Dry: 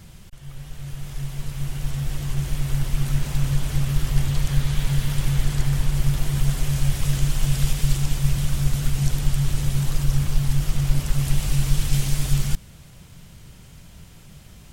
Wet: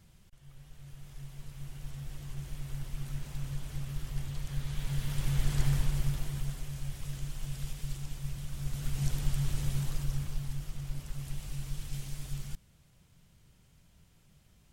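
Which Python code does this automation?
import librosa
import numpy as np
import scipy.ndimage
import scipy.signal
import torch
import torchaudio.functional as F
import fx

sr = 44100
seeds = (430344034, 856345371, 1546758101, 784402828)

y = fx.gain(x, sr, db=fx.line((4.45, -15.5), (5.67, -6.0), (6.69, -17.0), (8.49, -17.0), (9.05, -9.5), (9.72, -9.5), (10.73, -17.5)))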